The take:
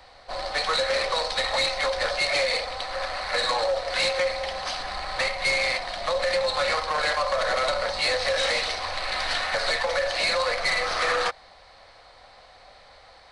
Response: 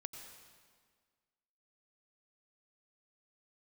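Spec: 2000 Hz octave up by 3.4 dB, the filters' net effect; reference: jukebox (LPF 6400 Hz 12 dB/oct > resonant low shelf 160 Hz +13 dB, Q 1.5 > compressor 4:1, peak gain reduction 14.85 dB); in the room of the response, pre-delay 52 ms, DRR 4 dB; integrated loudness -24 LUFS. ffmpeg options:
-filter_complex "[0:a]equalizer=f=2k:t=o:g=4,asplit=2[a][b];[1:a]atrim=start_sample=2205,adelay=52[c];[b][c]afir=irnorm=-1:irlink=0,volume=-0.5dB[d];[a][d]amix=inputs=2:normalize=0,lowpass=6.4k,lowshelf=f=160:t=q:w=1.5:g=13,acompressor=threshold=-33dB:ratio=4,volume=9.5dB"

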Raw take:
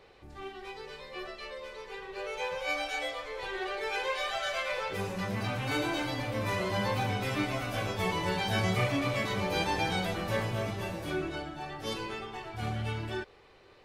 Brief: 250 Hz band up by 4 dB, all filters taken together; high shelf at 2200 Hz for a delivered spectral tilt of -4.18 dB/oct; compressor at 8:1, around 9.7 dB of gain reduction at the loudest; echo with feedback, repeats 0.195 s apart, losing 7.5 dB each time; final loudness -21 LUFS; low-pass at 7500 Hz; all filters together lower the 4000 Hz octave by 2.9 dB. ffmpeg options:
-af "lowpass=7.5k,equalizer=f=250:t=o:g=5.5,highshelf=f=2.2k:g=3.5,equalizer=f=4k:t=o:g=-7,acompressor=threshold=-33dB:ratio=8,aecho=1:1:195|390|585|780|975:0.422|0.177|0.0744|0.0312|0.0131,volume=16dB"

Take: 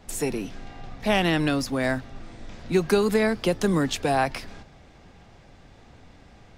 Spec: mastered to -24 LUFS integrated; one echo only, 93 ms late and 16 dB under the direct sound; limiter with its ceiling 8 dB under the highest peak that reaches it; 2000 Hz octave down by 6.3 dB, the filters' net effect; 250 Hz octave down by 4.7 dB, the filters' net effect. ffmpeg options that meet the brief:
-af "equalizer=f=250:t=o:g=-6.5,equalizer=f=2k:t=o:g=-8,alimiter=limit=-19.5dB:level=0:latency=1,aecho=1:1:93:0.158,volume=6.5dB"

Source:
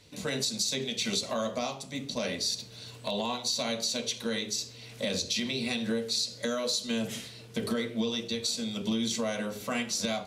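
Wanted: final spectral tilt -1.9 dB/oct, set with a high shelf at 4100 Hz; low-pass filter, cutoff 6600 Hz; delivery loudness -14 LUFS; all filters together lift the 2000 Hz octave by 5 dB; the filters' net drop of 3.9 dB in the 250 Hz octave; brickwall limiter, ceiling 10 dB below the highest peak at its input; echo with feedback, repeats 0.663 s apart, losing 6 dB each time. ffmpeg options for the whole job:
-af "lowpass=6.6k,equalizer=f=250:t=o:g=-4.5,equalizer=f=2k:t=o:g=4,highshelf=f=4.1k:g=9,alimiter=limit=-22dB:level=0:latency=1,aecho=1:1:663|1326|1989|2652|3315|3978:0.501|0.251|0.125|0.0626|0.0313|0.0157,volume=16.5dB"

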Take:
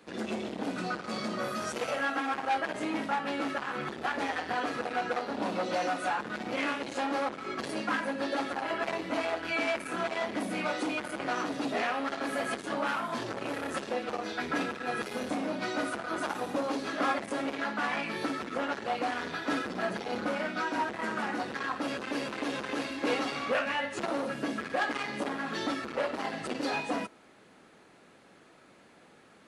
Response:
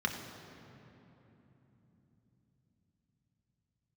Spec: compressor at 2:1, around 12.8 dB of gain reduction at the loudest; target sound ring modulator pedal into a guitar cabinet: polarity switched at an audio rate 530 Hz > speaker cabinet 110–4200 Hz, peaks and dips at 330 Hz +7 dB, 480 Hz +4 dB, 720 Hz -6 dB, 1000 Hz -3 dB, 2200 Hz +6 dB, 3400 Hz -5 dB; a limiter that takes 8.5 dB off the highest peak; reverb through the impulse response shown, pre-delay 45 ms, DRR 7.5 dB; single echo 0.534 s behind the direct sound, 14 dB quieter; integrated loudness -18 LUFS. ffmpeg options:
-filter_complex "[0:a]acompressor=threshold=-50dB:ratio=2,alimiter=level_in=13dB:limit=-24dB:level=0:latency=1,volume=-13dB,aecho=1:1:534:0.2,asplit=2[a][b];[1:a]atrim=start_sample=2205,adelay=45[c];[b][c]afir=irnorm=-1:irlink=0,volume=-14dB[d];[a][d]amix=inputs=2:normalize=0,aeval=exprs='val(0)*sgn(sin(2*PI*530*n/s))':c=same,highpass=110,equalizer=f=330:t=q:w=4:g=7,equalizer=f=480:t=q:w=4:g=4,equalizer=f=720:t=q:w=4:g=-6,equalizer=f=1k:t=q:w=4:g=-3,equalizer=f=2.2k:t=q:w=4:g=6,equalizer=f=3.4k:t=q:w=4:g=-5,lowpass=f=4.2k:w=0.5412,lowpass=f=4.2k:w=1.3066,volume=26.5dB"

